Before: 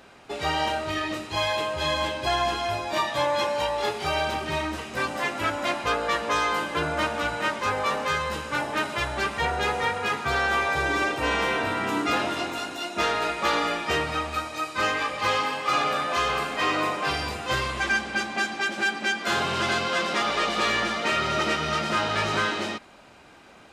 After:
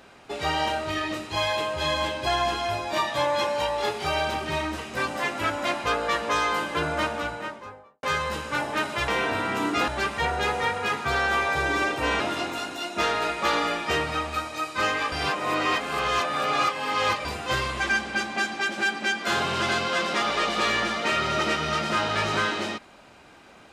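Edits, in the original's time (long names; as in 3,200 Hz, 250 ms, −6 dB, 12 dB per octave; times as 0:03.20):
0:06.93–0:08.03: fade out and dull
0:11.40–0:12.20: move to 0:09.08
0:15.12–0:17.25: reverse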